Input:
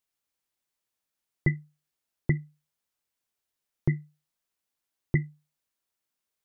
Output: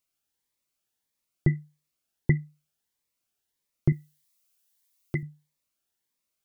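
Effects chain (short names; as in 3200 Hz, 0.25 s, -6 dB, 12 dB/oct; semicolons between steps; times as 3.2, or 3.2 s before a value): 3.92–5.23 tilt +3 dB/oct; cascading phaser rising 1.6 Hz; gain +3 dB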